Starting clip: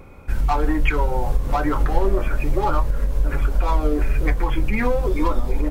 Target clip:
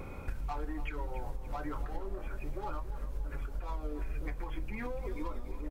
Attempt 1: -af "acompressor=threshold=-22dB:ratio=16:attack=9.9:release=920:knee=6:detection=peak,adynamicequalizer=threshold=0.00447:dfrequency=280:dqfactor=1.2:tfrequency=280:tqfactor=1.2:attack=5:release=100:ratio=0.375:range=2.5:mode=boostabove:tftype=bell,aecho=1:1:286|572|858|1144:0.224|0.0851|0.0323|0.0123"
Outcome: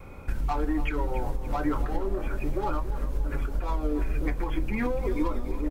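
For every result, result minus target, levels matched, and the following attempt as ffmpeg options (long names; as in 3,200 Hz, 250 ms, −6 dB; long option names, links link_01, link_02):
downward compressor: peak gain reduction −9 dB; 250 Hz band +3.0 dB
-af "acompressor=threshold=-31.5dB:ratio=16:attack=9.9:release=920:knee=6:detection=peak,adynamicequalizer=threshold=0.00447:dfrequency=280:dqfactor=1.2:tfrequency=280:tqfactor=1.2:attack=5:release=100:ratio=0.375:range=2.5:mode=boostabove:tftype=bell,aecho=1:1:286|572|858|1144:0.224|0.0851|0.0323|0.0123"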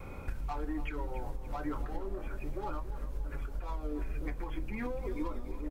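250 Hz band +3.0 dB
-af "acompressor=threshold=-31.5dB:ratio=16:attack=9.9:release=920:knee=6:detection=peak,aecho=1:1:286|572|858|1144:0.224|0.0851|0.0323|0.0123"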